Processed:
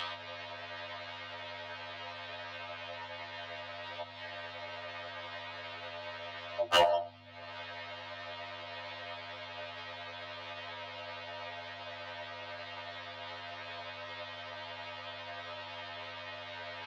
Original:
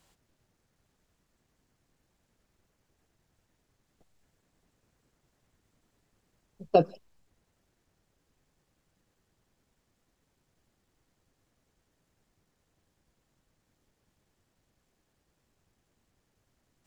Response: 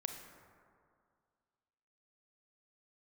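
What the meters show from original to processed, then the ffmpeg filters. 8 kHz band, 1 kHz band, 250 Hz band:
n/a, +2.5 dB, -10.5 dB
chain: -filter_complex "[0:a]acompressor=threshold=-37dB:ratio=2,highpass=f=330:t=q:w=0.5412,highpass=f=330:t=q:w=1.307,lowpass=f=3.6k:t=q:w=0.5176,lowpass=f=3.6k:t=q:w=0.7071,lowpass=f=3.6k:t=q:w=1.932,afreqshift=190,aecho=1:1:3.2:0.78,acompressor=mode=upward:threshold=-52dB:ratio=2.5,highshelf=f=2.8k:g=9,asplit=2[a][b];[b]adelay=88,lowpass=f=2.3k:p=1,volume=-23.5dB,asplit=2[c][d];[d]adelay=88,lowpass=f=2.3k:p=1,volume=0.51,asplit=2[e][f];[f]adelay=88,lowpass=f=2.3k:p=1,volume=0.51[g];[a][c][e][g]amix=inputs=4:normalize=0,asplit=2[h][i];[1:a]atrim=start_sample=2205,afade=t=out:st=0.26:d=0.01,atrim=end_sample=11907[j];[i][j]afir=irnorm=-1:irlink=0,volume=-5.5dB[k];[h][k]amix=inputs=2:normalize=0,afftfilt=real='re*lt(hypot(re,im),0.158)':imag='im*lt(hypot(re,im),0.158)':win_size=1024:overlap=0.75,aeval=exprs='0.0237*(abs(mod(val(0)/0.0237+3,4)-2)-1)':c=same,aeval=exprs='val(0)+0.000447*(sin(2*PI*50*n/s)+sin(2*PI*2*50*n/s)/2+sin(2*PI*3*50*n/s)/3+sin(2*PI*4*50*n/s)/4+sin(2*PI*5*50*n/s)/5)':c=same,afftfilt=real='re*2*eq(mod(b,4),0)':imag='im*2*eq(mod(b,4),0)':win_size=2048:overlap=0.75,volume=18dB"

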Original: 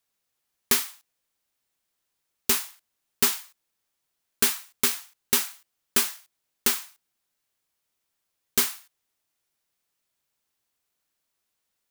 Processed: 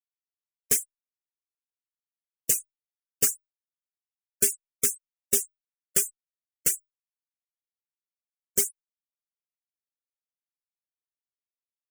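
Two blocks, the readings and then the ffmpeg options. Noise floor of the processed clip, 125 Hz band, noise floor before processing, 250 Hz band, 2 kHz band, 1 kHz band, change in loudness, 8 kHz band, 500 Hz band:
under -85 dBFS, -1.0 dB, -80 dBFS, -7.5 dB, -10.0 dB, -17.0 dB, -1.0 dB, +2.0 dB, -0.5 dB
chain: -filter_complex "[0:a]equalizer=f=125:t=o:w=1:g=5,equalizer=f=250:t=o:w=1:g=-7,equalizer=f=500:t=o:w=1:g=10,equalizer=f=1k:t=o:w=1:g=-11,equalizer=f=4k:t=o:w=1:g=-9,equalizer=f=8k:t=o:w=1:g=9,afftfilt=real='re*gte(hypot(re,im),0.0501)':imag='im*gte(hypot(re,im),0.0501)':win_size=1024:overlap=0.75,asplit=2[a][b];[b]adelay=3.8,afreqshift=1.2[c];[a][c]amix=inputs=2:normalize=1"

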